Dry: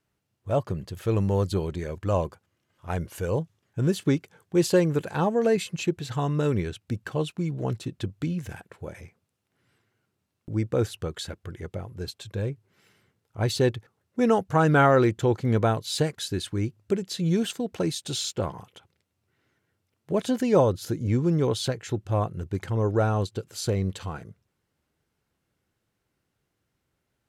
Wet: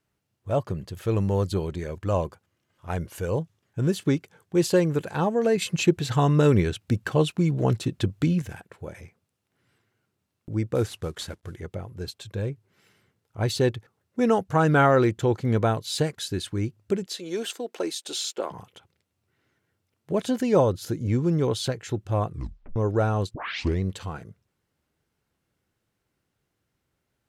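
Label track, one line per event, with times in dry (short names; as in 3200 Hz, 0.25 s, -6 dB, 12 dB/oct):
5.620000	8.420000	gain +6 dB
10.750000	11.560000	CVSD 64 kbps
17.060000	18.510000	HPF 310 Hz 24 dB/oct
22.290000	22.290000	tape stop 0.47 s
23.340000	23.340000	tape start 0.47 s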